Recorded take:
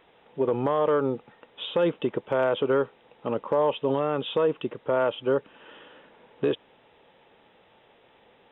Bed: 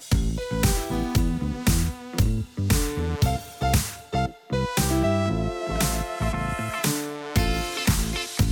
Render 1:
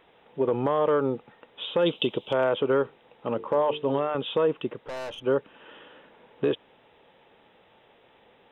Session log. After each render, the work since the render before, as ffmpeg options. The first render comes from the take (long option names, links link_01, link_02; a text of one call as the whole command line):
ffmpeg -i in.wav -filter_complex "[0:a]asplit=3[link_01][link_02][link_03];[link_01]afade=type=out:start_time=1.85:duration=0.02[link_04];[link_02]highshelf=frequency=2400:width_type=q:width=3:gain=9.5,afade=type=in:start_time=1.85:duration=0.02,afade=type=out:start_time=2.32:duration=0.02[link_05];[link_03]afade=type=in:start_time=2.32:duration=0.02[link_06];[link_04][link_05][link_06]amix=inputs=3:normalize=0,asettb=1/sr,asplit=3[link_07][link_08][link_09];[link_07]atrim=end=2.834[link_10];[link_08]atrim=start=2.83:end=4.15,asetpts=PTS-STARTPTS,afade=type=in:duration=0.004:curve=qsin,afade=type=out:start_time=1.316:duration=0.004:curve=qsin,bandreject=frequency=50:width_type=h:width=6,bandreject=frequency=100:width_type=h:width=6,bandreject=frequency=150:width_type=h:width=6,bandreject=frequency=200:width_type=h:width=6,bandreject=frequency=250:width_type=h:width=6,bandreject=frequency=300:width_type=h:width=6,bandreject=frequency=350:width_type=h:width=6,bandreject=frequency=400:width_type=h:width=6,bandreject=frequency=450:width_type=h:width=6[link_11];[link_09]atrim=start=4.146[link_12];[link_10][link_11]acrossfade=duration=0.004:curve1=hsin:curve2=qsin[link_13];[link_13][link_12]acrossfade=duration=0.004:curve1=qsin:curve2=hsin,asettb=1/sr,asplit=3[link_14][link_15][link_16];[link_14]atrim=end=4.804[link_17];[link_15]atrim=start=4.8:end=5.24,asetpts=PTS-STARTPTS,afade=type=in:duration=0.004:curve=qsin,afade=type=out:start_time=0.436:duration=0.004:curve=qsin,aeval=exprs='(tanh(44.7*val(0)+0.3)-tanh(0.3))/44.7':channel_layout=same[link_18];[link_16]atrim=start=5.236[link_19];[link_17][link_18]acrossfade=duration=0.004:curve1=hsin:curve2=qsin[link_20];[link_20][link_19]acrossfade=duration=0.004:curve1=qsin:curve2=hsin" out.wav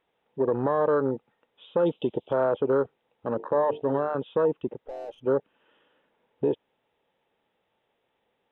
ffmpeg -i in.wav -af "afwtdn=0.0316" out.wav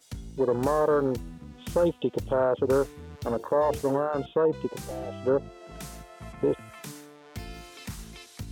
ffmpeg -i in.wav -i bed.wav -filter_complex "[1:a]volume=-17dB[link_01];[0:a][link_01]amix=inputs=2:normalize=0" out.wav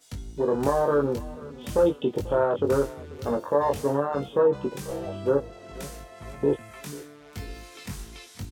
ffmpeg -i in.wav -filter_complex "[0:a]asplit=2[link_01][link_02];[link_02]adelay=21,volume=-4dB[link_03];[link_01][link_03]amix=inputs=2:normalize=0,aecho=1:1:490|980|1470:0.106|0.0466|0.0205" out.wav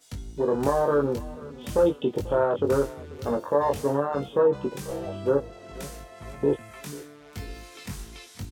ffmpeg -i in.wav -af anull out.wav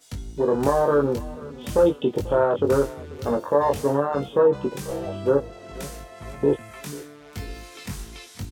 ffmpeg -i in.wav -af "volume=3dB" out.wav